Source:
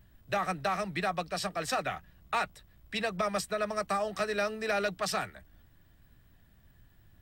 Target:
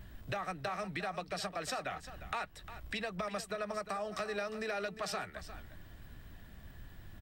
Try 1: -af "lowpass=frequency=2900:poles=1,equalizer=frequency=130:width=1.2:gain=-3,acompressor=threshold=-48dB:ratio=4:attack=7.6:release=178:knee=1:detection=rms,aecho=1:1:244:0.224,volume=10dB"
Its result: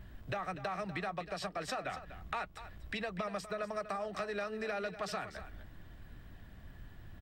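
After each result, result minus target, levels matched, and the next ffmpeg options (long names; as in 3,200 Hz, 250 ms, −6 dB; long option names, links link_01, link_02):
echo 109 ms early; 8,000 Hz band −4.5 dB
-af "lowpass=frequency=2900:poles=1,equalizer=frequency=130:width=1.2:gain=-3,acompressor=threshold=-48dB:ratio=4:attack=7.6:release=178:knee=1:detection=rms,aecho=1:1:353:0.224,volume=10dB"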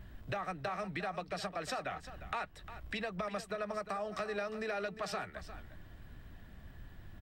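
8,000 Hz band −4.5 dB
-af "lowpass=frequency=7600:poles=1,equalizer=frequency=130:width=1.2:gain=-3,acompressor=threshold=-48dB:ratio=4:attack=7.6:release=178:knee=1:detection=rms,aecho=1:1:353:0.224,volume=10dB"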